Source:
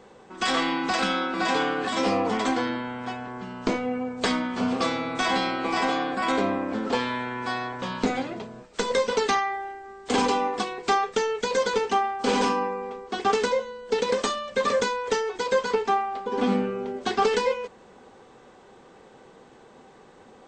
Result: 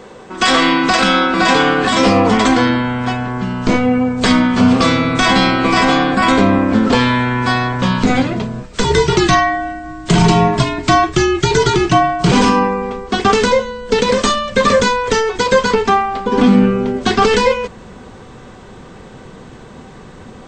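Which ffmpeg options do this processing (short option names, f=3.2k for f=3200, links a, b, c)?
-filter_complex "[0:a]asettb=1/sr,asplit=3[a][b][c];[a]atrim=end=8.844[d];[b]atrim=start=8.84:end=12.32,asetpts=PTS-STARTPTS,afade=t=in:d=0.004:c=qsin,afade=t=out:st=3.476:d=0.004:c=qsin,afreqshift=-78[e];[c]atrim=start=12.316[f];[d][e]acrossfade=d=0.004:c1=hsin:c2=qsin[g];[g][f]acrossfade=d=0.004:c1=qsin:c2=hsin,bandreject=f=820:w=12,asubboost=boost=4:cutoff=190,alimiter=level_in=15dB:limit=-1dB:release=50:level=0:latency=1,volume=-1dB"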